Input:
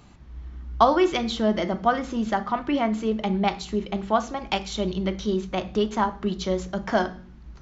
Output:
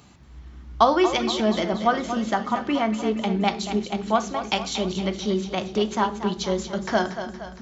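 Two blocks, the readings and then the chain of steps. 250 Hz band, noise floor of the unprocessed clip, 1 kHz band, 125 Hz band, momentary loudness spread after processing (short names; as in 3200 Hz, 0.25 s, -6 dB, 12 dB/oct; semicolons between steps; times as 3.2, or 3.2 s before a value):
+0.5 dB, -46 dBFS, +1.0 dB, 0.0 dB, 6 LU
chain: HPF 71 Hz 12 dB/oct; high shelf 3600 Hz +6.5 dB; on a send: split-band echo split 360 Hz, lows 0.335 s, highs 0.233 s, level -10 dB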